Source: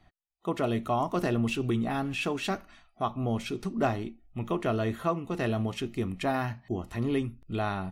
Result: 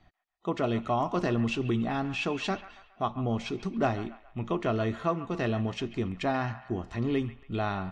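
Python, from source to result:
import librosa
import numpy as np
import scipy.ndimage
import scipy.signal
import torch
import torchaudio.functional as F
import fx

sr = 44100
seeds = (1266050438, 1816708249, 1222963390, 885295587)

p1 = scipy.signal.sosfilt(scipy.signal.butter(4, 6700.0, 'lowpass', fs=sr, output='sos'), x)
y = p1 + fx.echo_wet_bandpass(p1, sr, ms=138, feedback_pct=43, hz=1500.0, wet_db=-13, dry=0)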